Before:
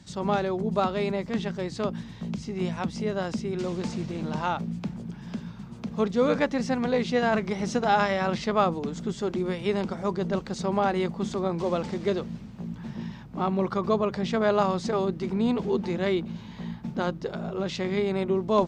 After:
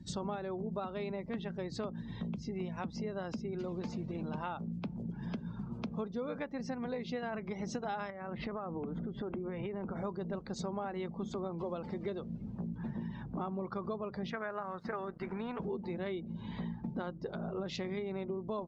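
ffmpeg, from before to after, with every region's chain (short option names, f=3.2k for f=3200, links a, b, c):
-filter_complex "[0:a]asettb=1/sr,asplit=3[a][b][c];[a]atrim=end=8.104[d];[b]atrim=start=8.1:end=9.96,asetpts=PTS-STARTPTS,afade=t=in:d=0.004:c=qsin,afade=t=out:st=1.856:d=0.004:c=qsin,lowpass=2.3k,acompressor=threshold=-32dB:ratio=8:attack=3.2:release=140:knee=1:detection=peak[e];[c]atrim=start=9.956[f];[d][e]acrossfade=d=0.004:c1=hsin:c2=qsin[g];[g][f]acrossfade=d=0.004:c1=qsin:c2=hsin,asettb=1/sr,asplit=3[h][i][j];[h]atrim=end=14.304[k];[i]atrim=start=14.3:end=15.6,asetpts=PTS-STARTPTS,afade=t=in:d=0.004:c=qsin,afade=t=out:st=1.296:d=0.004:c=qsin,equalizer=f=1.6k:w=1.5:g=7.5,acrossover=split=550|2700[l][m][n];[l]acompressor=threshold=-33dB:ratio=4[o];[m]acompressor=threshold=-23dB:ratio=4[p];[n]acompressor=threshold=-53dB:ratio=4[q];[o][p][q]amix=inputs=3:normalize=0,aeval=exprs='sgn(val(0))*max(abs(val(0))-0.00562,0)':c=same[r];[j]atrim=start=15.596[s];[k][r]acrossfade=d=0.004:c1=hsin:c2=qsin[t];[t][s]acrossfade=d=0.004:c1=qsin:c2=hsin,acompressor=threshold=-37dB:ratio=8,afftdn=nr=21:nf=-54,volume=1.5dB"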